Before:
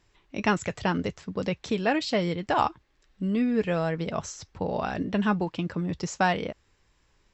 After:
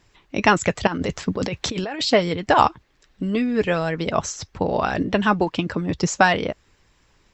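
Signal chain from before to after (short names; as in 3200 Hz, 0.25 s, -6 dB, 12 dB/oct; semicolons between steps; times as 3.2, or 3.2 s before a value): 0.87–2.02 negative-ratio compressor -32 dBFS, ratio -1; harmonic-percussive split percussive +8 dB; gain +2.5 dB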